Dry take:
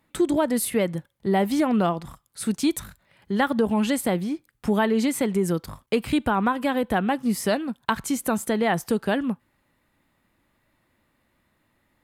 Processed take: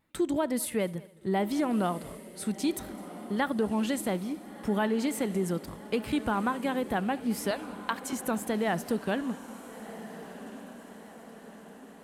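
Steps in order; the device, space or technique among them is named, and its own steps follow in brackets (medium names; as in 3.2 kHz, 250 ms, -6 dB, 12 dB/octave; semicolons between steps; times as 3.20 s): 7.51–8.13 s: Bessel high-pass 560 Hz; multi-head tape echo (multi-head delay 70 ms, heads first and third, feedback 41%, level -23 dB; wow and flutter 47 cents); echo that smears into a reverb 1384 ms, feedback 55%, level -14 dB; trim -6.5 dB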